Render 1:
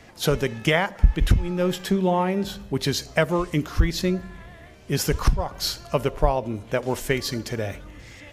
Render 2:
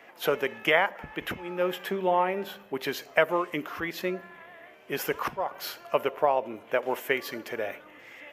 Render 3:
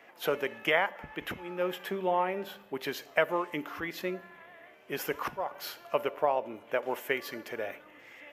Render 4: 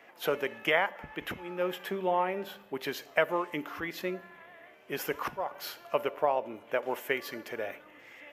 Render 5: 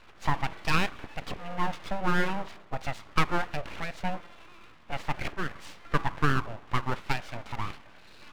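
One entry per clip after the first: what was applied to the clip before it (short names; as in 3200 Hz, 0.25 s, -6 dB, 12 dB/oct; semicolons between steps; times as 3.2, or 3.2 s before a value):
HPF 450 Hz 12 dB/oct; band shelf 6200 Hz -13.5 dB
resonator 290 Hz, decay 1.1 s, mix 50%; gain +2 dB
nothing audible
tape spacing loss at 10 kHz 30 dB; full-wave rectifier; gain +7 dB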